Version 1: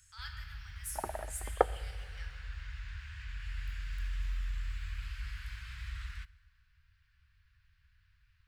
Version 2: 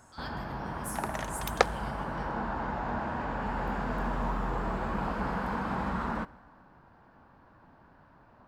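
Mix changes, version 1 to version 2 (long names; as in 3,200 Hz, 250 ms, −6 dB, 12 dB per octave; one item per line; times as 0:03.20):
first sound: remove inverse Chebyshev band-stop filter 290–630 Hz, stop band 80 dB
second sound: remove Gaussian smoothing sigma 6.2 samples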